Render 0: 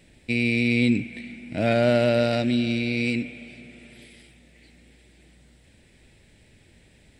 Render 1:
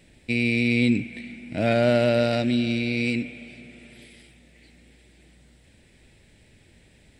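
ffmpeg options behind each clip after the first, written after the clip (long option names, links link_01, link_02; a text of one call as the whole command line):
ffmpeg -i in.wav -af anull out.wav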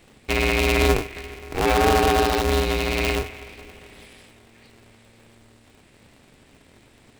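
ffmpeg -i in.wav -af "aeval=exprs='val(0)*sgn(sin(2*PI*170*n/s))':channel_layout=same,volume=2dB" out.wav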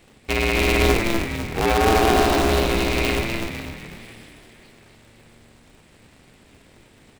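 ffmpeg -i in.wav -filter_complex "[0:a]asplit=7[link_01][link_02][link_03][link_04][link_05][link_06][link_07];[link_02]adelay=250,afreqshift=-73,volume=-4.5dB[link_08];[link_03]adelay=500,afreqshift=-146,volume=-11.1dB[link_09];[link_04]adelay=750,afreqshift=-219,volume=-17.6dB[link_10];[link_05]adelay=1000,afreqshift=-292,volume=-24.2dB[link_11];[link_06]adelay=1250,afreqshift=-365,volume=-30.7dB[link_12];[link_07]adelay=1500,afreqshift=-438,volume=-37.3dB[link_13];[link_01][link_08][link_09][link_10][link_11][link_12][link_13]amix=inputs=7:normalize=0" out.wav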